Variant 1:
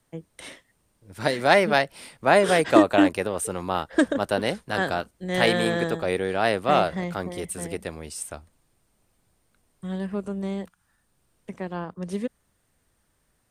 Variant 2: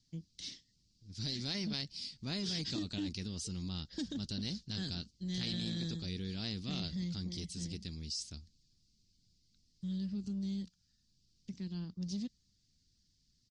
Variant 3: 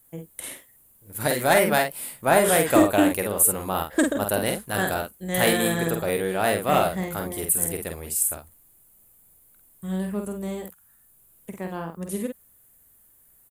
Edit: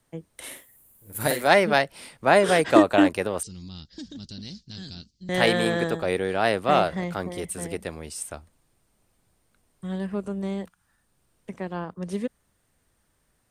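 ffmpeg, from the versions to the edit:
-filter_complex "[0:a]asplit=3[s0][s1][s2];[s0]atrim=end=0.58[s3];[2:a]atrim=start=0.34:end=1.52[s4];[s1]atrim=start=1.28:end=3.432[s5];[1:a]atrim=start=3.428:end=5.292[s6];[s2]atrim=start=5.288[s7];[s3][s4]acrossfade=d=0.24:c1=tri:c2=tri[s8];[s8][s5]acrossfade=d=0.24:c1=tri:c2=tri[s9];[s9][s6]acrossfade=d=0.004:c1=hsin:c2=hsin[s10];[s10][s7]acrossfade=d=0.004:c1=hsin:c2=hsin"

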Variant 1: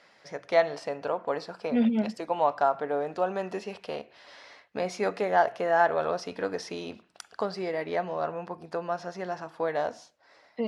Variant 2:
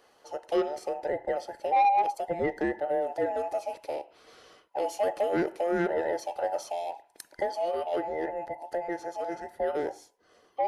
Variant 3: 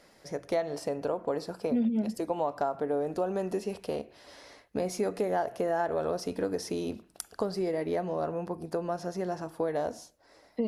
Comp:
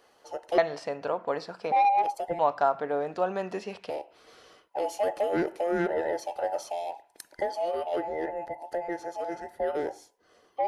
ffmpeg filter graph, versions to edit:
-filter_complex "[0:a]asplit=2[s0][s1];[1:a]asplit=3[s2][s3][s4];[s2]atrim=end=0.582[s5];[s0]atrim=start=0.578:end=1.722[s6];[s3]atrim=start=1.718:end=2.392[s7];[s1]atrim=start=2.388:end=3.902[s8];[s4]atrim=start=3.898[s9];[s5][s6]acrossfade=d=0.004:c1=hsin:c2=hsin[s10];[s10][s7]acrossfade=d=0.004:c1=hsin:c2=hsin[s11];[s11][s8]acrossfade=d=0.004:c1=hsin:c2=hsin[s12];[s12][s9]acrossfade=d=0.004:c1=hsin:c2=hsin"

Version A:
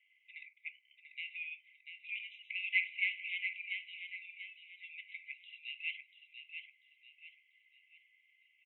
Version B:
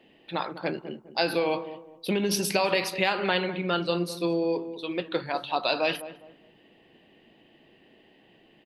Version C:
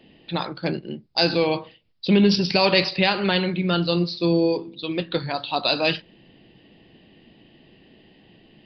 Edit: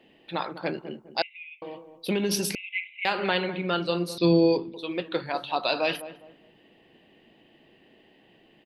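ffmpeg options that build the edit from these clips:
-filter_complex "[0:a]asplit=2[s0][s1];[1:a]asplit=4[s2][s3][s4][s5];[s2]atrim=end=1.222[s6];[s0]atrim=start=1.218:end=1.622[s7];[s3]atrim=start=1.618:end=2.552[s8];[s1]atrim=start=2.548:end=3.052[s9];[s4]atrim=start=3.048:end=4.182[s10];[2:a]atrim=start=4.178:end=4.742[s11];[s5]atrim=start=4.738[s12];[s6][s7]acrossfade=d=0.004:c1=hsin:c2=hsin[s13];[s13][s8]acrossfade=d=0.004:c1=hsin:c2=hsin[s14];[s14][s9]acrossfade=d=0.004:c1=hsin:c2=hsin[s15];[s15][s10]acrossfade=d=0.004:c1=hsin:c2=hsin[s16];[s16][s11]acrossfade=d=0.004:c1=hsin:c2=hsin[s17];[s17][s12]acrossfade=d=0.004:c1=hsin:c2=hsin"

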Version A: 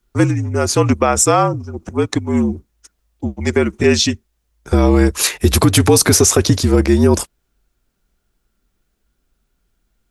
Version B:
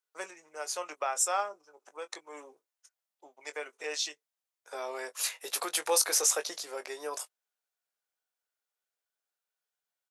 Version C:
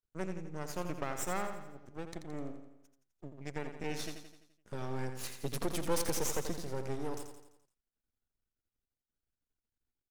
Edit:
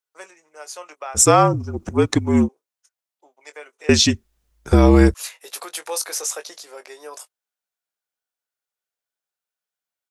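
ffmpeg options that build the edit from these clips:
-filter_complex "[0:a]asplit=2[s0][s1];[1:a]asplit=3[s2][s3][s4];[s2]atrim=end=1.2[s5];[s0]atrim=start=1.14:end=2.49[s6];[s3]atrim=start=2.43:end=3.892[s7];[s1]atrim=start=3.888:end=5.142[s8];[s4]atrim=start=5.138[s9];[s5][s6]acrossfade=d=0.06:c1=tri:c2=tri[s10];[s10][s7]acrossfade=d=0.06:c1=tri:c2=tri[s11];[s11][s8]acrossfade=d=0.004:c1=hsin:c2=hsin[s12];[s12][s9]acrossfade=d=0.004:c1=hsin:c2=hsin"

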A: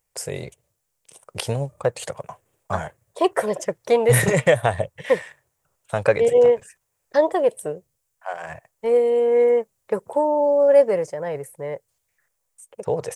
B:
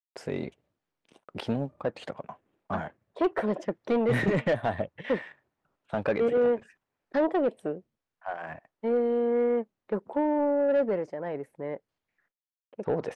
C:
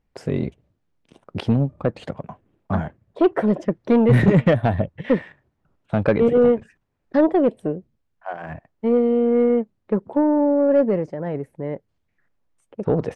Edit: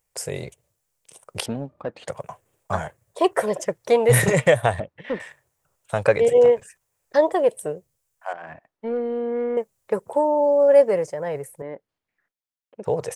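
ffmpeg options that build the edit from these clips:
-filter_complex "[1:a]asplit=4[s0][s1][s2][s3];[0:a]asplit=5[s4][s5][s6][s7][s8];[s4]atrim=end=1.462[s9];[s0]atrim=start=1.458:end=2.082[s10];[s5]atrim=start=2.078:end=4.802[s11];[s1]atrim=start=4.798:end=5.202[s12];[s6]atrim=start=5.198:end=8.332[s13];[s2]atrim=start=8.328:end=9.572[s14];[s7]atrim=start=9.568:end=11.622[s15];[s3]atrim=start=11.618:end=12.842[s16];[s8]atrim=start=12.838[s17];[s9][s10]acrossfade=d=0.004:c1=hsin:c2=hsin[s18];[s18][s11]acrossfade=d=0.004:c1=hsin:c2=hsin[s19];[s19][s12]acrossfade=d=0.004:c1=hsin:c2=hsin[s20];[s20][s13]acrossfade=d=0.004:c1=hsin:c2=hsin[s21];[s21][s14]acrossfade=d=0.004:c1=hsin:c2=hsin[s22];[s22][s15]acrossfade=d=0.004:c1=hsin:c2=hsin[s23];[s23][s16]acrossfade=d=0.004:c1=hsin:c2=hsin[s24];[s24][s17]acrossfade=d=0.004:c1=hsin:c2=hsin"

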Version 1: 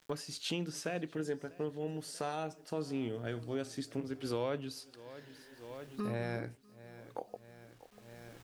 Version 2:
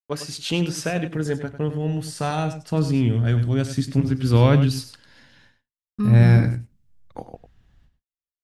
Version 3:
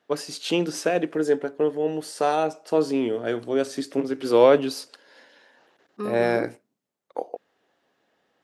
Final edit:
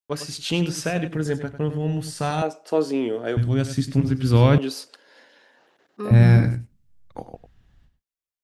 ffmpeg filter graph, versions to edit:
-filter_complex "[2:a]asplit=2[s0][s1];[1:a]asplit=3[s2][s3][s4];[s2]atrim=end=2.422[s5];[s0]atrim=start=2.418:end=3.372[s6];[s3]atrim=start=3.368:end=4.582[s7];[s1]atrim=start=4.578:end=6.112[s8];[s4]atrim=start=6.108[s9];[s5][s6]acrossfade=d=0.004:c1=hsin:c2=hsin[s10];[s10][s7]acrossfade=d=0.004:c1=hsin:c2=hsin[s11];[s11][s8]acrossfade=d=0.004:c1=hsin:c2=hsin[s12];[s12][s9]acrossfade=d=0.004:c1=hsin:c2=hsin"

